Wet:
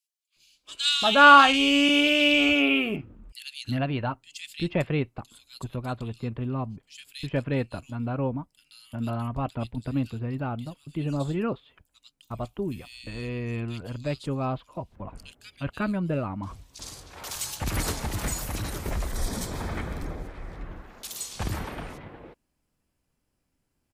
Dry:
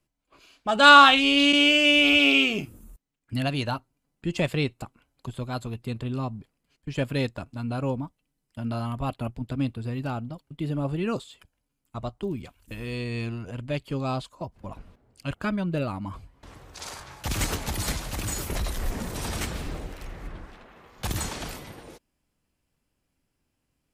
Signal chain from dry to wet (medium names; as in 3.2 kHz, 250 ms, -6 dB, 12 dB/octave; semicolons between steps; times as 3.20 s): 18.76–20.25 s: band-stop 2.8 kHz, Q 5.9; bands offset in time highs, lows 360 ms, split 2.9 kHz